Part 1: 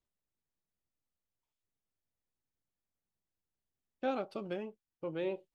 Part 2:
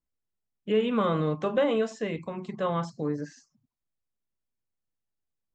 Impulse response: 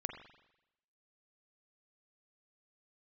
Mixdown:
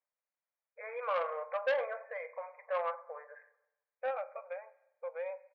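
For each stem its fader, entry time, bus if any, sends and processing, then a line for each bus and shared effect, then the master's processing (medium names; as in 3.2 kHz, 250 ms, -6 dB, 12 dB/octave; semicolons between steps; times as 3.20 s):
-1.5 dB, 0.00 s, send -8.5 dB, none
-6.5 dB, 0.10 s, send -5 dB, none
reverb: on, RT60 0.90 s, pre-delay 41 ms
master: brick-wall FIR band-pass 470–2500 Hz; transformer saturation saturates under 1.3 kHz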